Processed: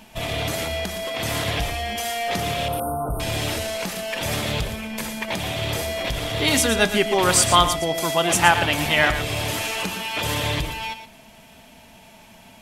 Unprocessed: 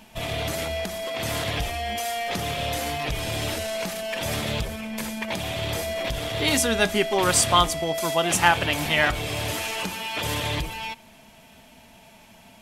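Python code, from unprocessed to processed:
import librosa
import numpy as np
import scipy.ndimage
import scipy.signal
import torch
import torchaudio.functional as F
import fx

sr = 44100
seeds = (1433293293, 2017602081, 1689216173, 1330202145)

p1 = fx.brickwall_bandstop(x, sr, low_hz=1500.0, high_hz=8400.0, at=(2.68, 3.2))
p2 = p1 + fx.echo_single(p1, sr, ms=116, db=-10.5, dry=0)
y = F.gain(torch.from_numpy(p2), 2.5).numpy()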